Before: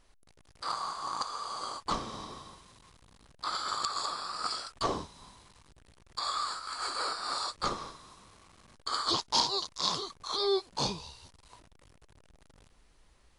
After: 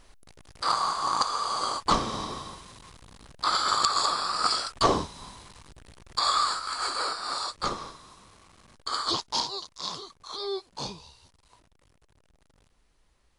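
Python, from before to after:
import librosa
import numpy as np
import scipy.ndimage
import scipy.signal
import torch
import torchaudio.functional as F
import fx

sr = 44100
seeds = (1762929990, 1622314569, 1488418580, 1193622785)

y = fx.gain(x, sr, db=fx.line((6.37, 9.0), (7.21, 2.5), (9.04, 2.5), (9.62, -4.0)))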